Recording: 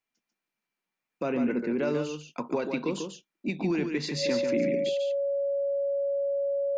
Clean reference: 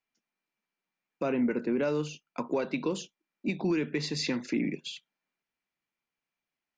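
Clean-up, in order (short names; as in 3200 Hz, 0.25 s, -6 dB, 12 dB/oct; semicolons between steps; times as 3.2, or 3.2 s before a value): notch 560 Hz, Q 30; inverse comb 0.143 s -6 dB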